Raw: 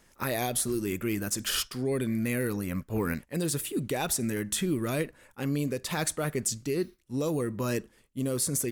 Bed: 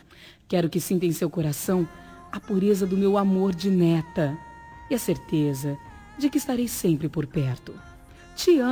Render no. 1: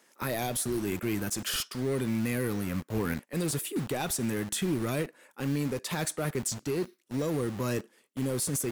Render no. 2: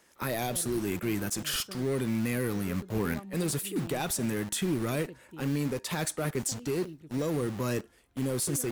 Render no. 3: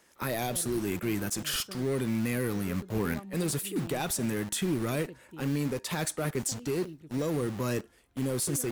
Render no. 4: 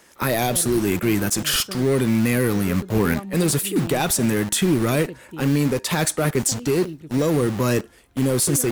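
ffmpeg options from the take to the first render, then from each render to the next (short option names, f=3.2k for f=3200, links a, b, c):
-filter_complex "[0:a]acrossover=split=220[a][b];[a]acrusher=bits=6:mix=0:aa=0.000001[c];[b]asoftclip=type=tanh:threshold=-24.5dB[d];[c][d]amix=inputs=2:normalize=0"
-filter_complex "[1:a]volume=-23dB[a];[0:a][a]amix=inputs=2:normalize=0"
-af anull
-af "volume=10.5dB"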